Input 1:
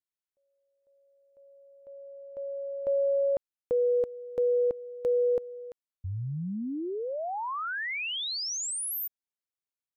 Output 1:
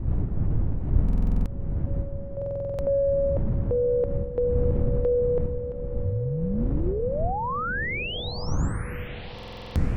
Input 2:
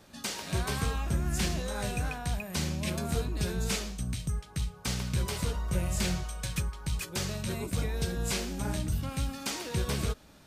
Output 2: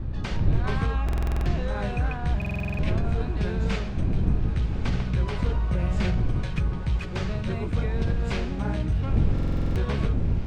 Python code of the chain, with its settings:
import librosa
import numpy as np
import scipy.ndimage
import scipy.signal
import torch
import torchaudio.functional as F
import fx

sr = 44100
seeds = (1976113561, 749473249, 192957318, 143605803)

p1 = fx.dmg_wind(x, sr, seeds[0], corner_hz=120.0, level_db=-29.0)
p2 = scipy.signal.sosfilt(scipy.signal.butter(2, 2500.0, 'lowpass', fs=sr, output='sos'), p1)
p3 = fx.low_shelf(p2, sr, hz=72.0, db=4.5)
p4 = fx.over_compress(p3, sr, threshold_db=-26.0, ratio=-0.5)
p5 = p3 + (p4 * 10.0 ** (1.0 / 20.0))
p6 = fx.echo_diffused(p5, sr, ms=1120, feedback_pct=65, wet_db=-12.5)
p7 = fx.buffer_glitch(p6, sr, at_s=(1.04, 2.37, 9.34), block=2048, repeats=8)
y = p7 * 10.0 ** (-4.0 / 20.0)